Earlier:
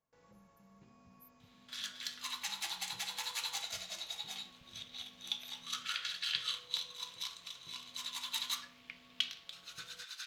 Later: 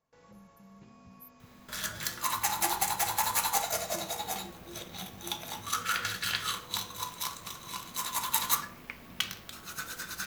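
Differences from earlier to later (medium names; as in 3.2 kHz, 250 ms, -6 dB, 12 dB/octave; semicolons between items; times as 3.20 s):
speech +9.0 dB; first sound +7.0 dB; second sound: remove band-pass filter 3.5 kHz, Q 2.1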